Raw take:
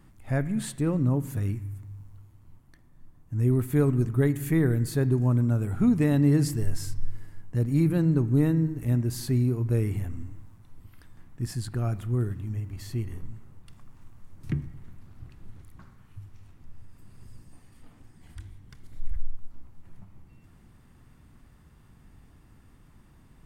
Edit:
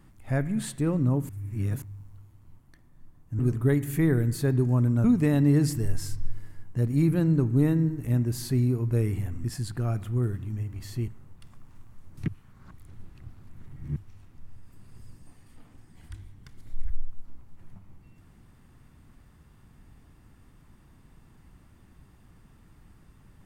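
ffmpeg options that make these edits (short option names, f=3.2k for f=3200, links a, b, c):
-filter_complex "[0:a]asplit=9[a][b][c][d][e][f][g][h][i];[a]atrim=end=1.292[j];[b]atrim=start=1.288:end=1.822,asetpts=PTS-STARTPTS,areverse[k];[c]atrim=start=1.818:end=3.392[l];[d]atrim=start=3.918:end=5.572[m];[e]atrim=start=5.818:end=10.222[n];[f]atrim=start=11.408:end=13.052[o];[g]atrim=start=13.338:end=14.542[p];[h]atrim=start=14.538:end=16.222,asetpts=PTS-STARTPTS,areverse[q];[i]atrim=start=16.218[r];[j][k]acrossfade=d=0.004:c1=hsin:c2=hsin[s];[s][l]acrossfade=d=0.004:c1=hsin:c2=hsin[t];[t][m]acrossfade=d=0.004:c1=hsin:c2=hsin[u];[u][n]acrossfade=d=0.004:c1=hsin:c2=hsin[v];[v][o]acrossfade=d=0.004:c1=hsin:c2=hsin[w];[w][p]acrossfade=d=0.004:c1=hsin:c2=hsin[x];[x][q]acrossfade=d=0.004:c1=hsin:c2=hsin[y];[y][r]acrossfade=d=0.004:c1=hsin:c2=hsin"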